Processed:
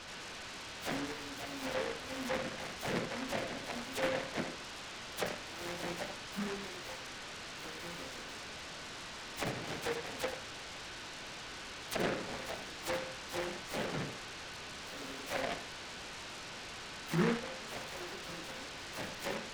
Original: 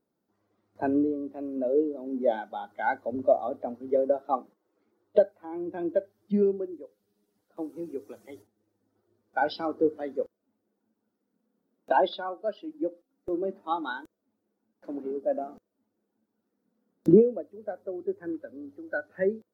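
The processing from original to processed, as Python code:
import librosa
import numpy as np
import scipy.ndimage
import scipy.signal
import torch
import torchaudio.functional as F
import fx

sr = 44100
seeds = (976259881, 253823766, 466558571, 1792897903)

y = fx.peak_eq(x, sr, hz=330.0, db=-12.5, octaves=1.1)
y = fx.resonator_bank(y, sr, root=53, chord='sus4', decay_s=0.35)
y = fx.room_flutter(y, sr, wall_m=4.3, rt60_s=0.26)
y = fx.sample_hold(y, sr, seeds[0], rate_hz=1400.0, jitter_pct=20)
y = scipy.signal.sosfilt(scipy.signal.butter(4, 120.0, 'highpass', fs=sr, output='sos'), y)
y = fx.dispersion(y, sr, late='lows', ms=54.0, hz=1400.0)
y = fx.env_lowpass_down(y, sr, base_hz=430.0, full_db=-44.5)
y = y + 10.0 ** (-60.0 / 20.0) * np.sin(2.0 * np.pi * 1500.0 * np.arange(len(y)) / sr)
y = y + 10.0 ** (-8.5 / 20.0) * np.pad(y, (int(82 * sr / 1000.0), 0))[:len(y)]
y = fx.noise_mod_delay(y, sr, seeds[1], noise_hz=1200.0, depth_ms=0.2)
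y = F.gain(torch.from_numpy(y), 14.0).numpy()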